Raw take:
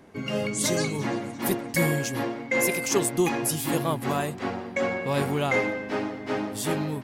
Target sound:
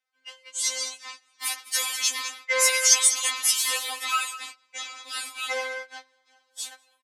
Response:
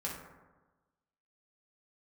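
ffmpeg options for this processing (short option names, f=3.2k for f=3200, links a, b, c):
-filter_complex "[0:a]highpass=740,lowpass=5.2k,aderivative,dynaudnorm=f=250:g=11:m=10.5dB,asettb=1/sr,asplit=3[a][b][c];[a]atrim=end=4.244[d];[b]atrim=start=4.24:end=6.72,asetpts=PTS-STARTPTS,afade=t=in:d=0.004:c=qsin,afade=t=out:st=2.476:d=0.004:c=qsin,equalizer=f=1.6k:w=0.43:g=-7[e];[c]atrim=start=6.716[f];[d][e]acrossfade=d=0.004:c1=hsin:c2=qsin[g];[g][f]acrossfade=d=0.004:c1=qsin:c2=hsin,aecho=1:1:203:0.266,acontrast=38,agate=range=-21dB:threshold=-37dB:ratio=16:detection=peak,afftfilt=real='re*3.46*eq(mod(b,12),0)':imag='im*3.46*eq(mod(b,12),0)':win_size=2048:overlap=0.75,volume=4.5dB"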